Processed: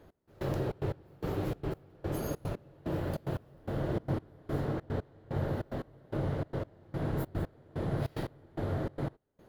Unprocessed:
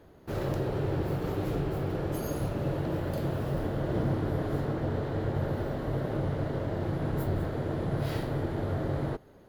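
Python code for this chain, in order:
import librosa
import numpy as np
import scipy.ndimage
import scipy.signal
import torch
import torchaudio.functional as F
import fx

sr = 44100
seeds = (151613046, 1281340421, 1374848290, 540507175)

y = fx.step_gate(x, sr, bpm=147, pattern='x...xxx.', floor_db=-24.0, edge_ms=4.5)
y = F.gain(torch.from_numpy(y), -2.0).numpy()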